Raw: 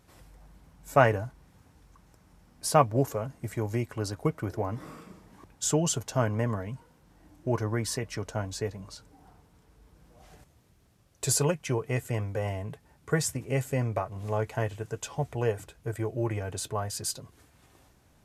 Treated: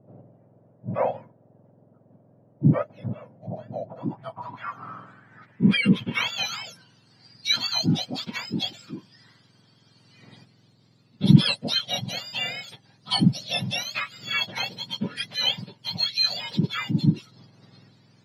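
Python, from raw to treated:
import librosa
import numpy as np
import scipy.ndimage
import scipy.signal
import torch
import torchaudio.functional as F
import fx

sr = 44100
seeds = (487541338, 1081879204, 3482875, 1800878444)

y = fx.octave_mirror(x, sr, pivot_hz=1200.0)
y = fx.filter_sweep_lowpass(y, sr, from_hz=590.0, to_hz=4400.0, start_s=3.8, end_s=6.57, q=3.9)
y = y * librosa.db_to_amplitude(4.0)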